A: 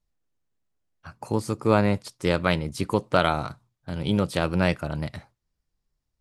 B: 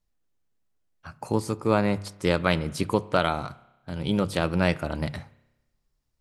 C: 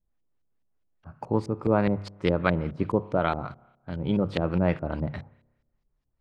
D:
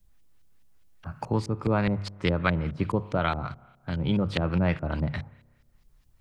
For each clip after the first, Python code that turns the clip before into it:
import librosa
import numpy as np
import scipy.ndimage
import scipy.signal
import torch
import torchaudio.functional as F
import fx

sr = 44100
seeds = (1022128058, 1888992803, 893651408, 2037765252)

y1 = fx.hum_notches(x, sr, base_hz=50, count=3)
y1 = fx.rider(y1, sr, range_db=3, speed_s=0.5)
y1 = fx.rev_spring(y1, sr, rt60_s=1.0, pass_ms=(30,), chirp_ms=40, drr_db=18.5)
y2 = fx.filter_lfo_lowpass(y1, sr, shape='saw_up', hz=4.8, low_hz=410.0, high_hz=4800.0, q=0.76)
y3 = fx.peak_eq(y2, sr, hz=440.0, db=-9.5, octaves=3.0)
y3 = fx.band_squash(y3, sr, depth_pct=40)
y3 = y3 * 10.0 ** (5.5 / 20.0)